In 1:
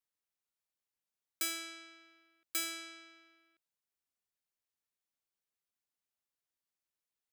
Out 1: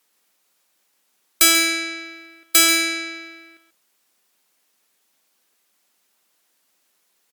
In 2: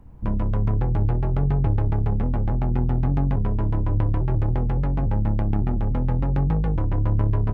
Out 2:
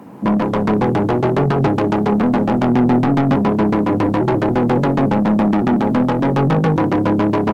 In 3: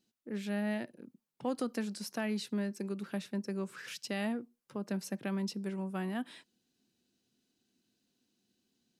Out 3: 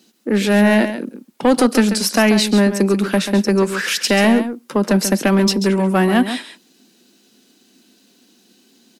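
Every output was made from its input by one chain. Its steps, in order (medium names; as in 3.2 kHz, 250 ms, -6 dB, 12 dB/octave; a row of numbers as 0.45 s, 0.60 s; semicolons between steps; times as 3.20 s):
high-pass 200 Hz 24 dB/octave; saturation -31 dBFS; on a send: delay 137 ms -10 dB; on the sum: MP3 80 kbps 48 kHz; normalise loudness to -16 LUFS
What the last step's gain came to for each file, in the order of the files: +25.0 dB, +20.5 dB, +25.0 dB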